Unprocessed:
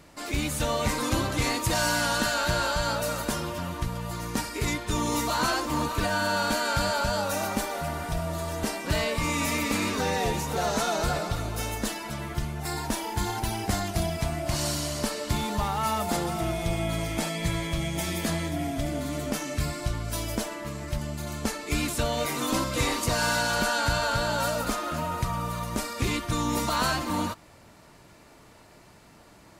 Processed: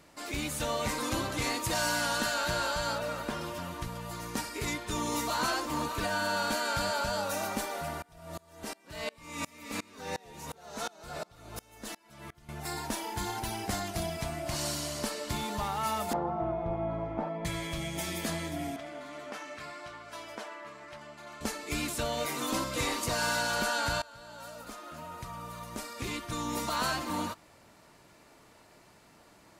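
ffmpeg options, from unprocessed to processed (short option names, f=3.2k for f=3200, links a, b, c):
-filter_complex "[0:a]asettb=1/sr,asplit=3[a][b][c];[a]atrim=end=2.984[d];[b]atrim=start=2.98:end=3.41,asetpts=PTS-STARTPTS,afade=t=in:d=0.004:c=qsin,afade=t=out:st=0.426:d=0.004:c=qsin,acrossover=split=3900[e][f];[f]acompressor=threshold=-47dB:ratio=4:attack=1:release=60[g];[e][g]amix=inputs=2:normalize=0[h];[c]atrim=start=3.406[i];[d][h]acrossfade=d=0.004:c1=hsin:c2=qsin[j];[j][i]acrossfade=d=0.004:c1=qsin:c2=hsin,asettb=1/sr,asplit=3[k][l][m];[k]atrim=end=8.024[n];[l]atrim=start=8.02:end=12.49,asetpts=PTS-STARTPTS,afade=t=in:d=0.004:c=qsin,afade=t=out:st=4.466:d=0.004:c=qsin,aeval=exprs='val(0)*pow(10,-29*if(lt(mod(-2.8*n/s,1),2*abs(-2.8)/1000),1-mod(-2.8*n/s,1)/(2*abs(-2.8)/1000),(mod(-2.8*n/s,1)-2*abs(-2.8)/1000)/(1-2*abs(-2.8)/1000))/20)':c=same[o];[m]atrim=start=12.486[p];[n][o]acrossfade=d=0.004:c1=hsin:c2=qsin[q];[q][p]acrossfade=d=0.004:c1=qsin:c2=hsin,asettb=1/sr,asplit=3[r][s][t];[r]atrim=end=16.134[u];[s]atrim=start=16.13:end=17.45,asetpts=PTS-STARTPTS,afade=t=in:d=0.004:c=qsin,afade=t=out:st=1.316:d=0.004:c=qsin,lowpass=f=930:t=q:w=1.7[v];[t]atrim=start=17.446[w];[u][v]acrossfade=d=0.004:c1=hsin:c2=qsin[x];[x][w]acrossfade=d=0.004:c1=qsin:c2=hsin,asettb=1/sr,asplit=3[y][z][aa];[y]atrim=end=18.764[ab];[z]atrim=start=18.76:end=21.41,asetpts=PTS-STARTPTS,afade=t=in:d=0.004:c=qsin,afade=t=out:st=2.646:d=0.004:c=qsin,bandpass=f=1.3k:t=q:w=0.73[ac];[aa]atrim=start=21.406[ad];[ab][ac]acrossfade=d=0.004:c1=hsin:c2=qsin[ae];[ae][ad]acrossfade=d=0.004:c1=qsin:c2=hsin,asplit=2[af][ag];[af]atrim=end=24.02,asetpts=PTS-STARTPTS,afade=t=out:st=24.016:d=0.004:c=hsin:silence=0.0749894[ah];[ag]atrim=start=24.02,asetpts=PTS-STARTPTS,afade=t=in:d=3.01:silence=0.0749894[ai];[ah][ai]concat=n=2:v=0:a=1,lowshelf=f=160:g=-7,volume=-4dB"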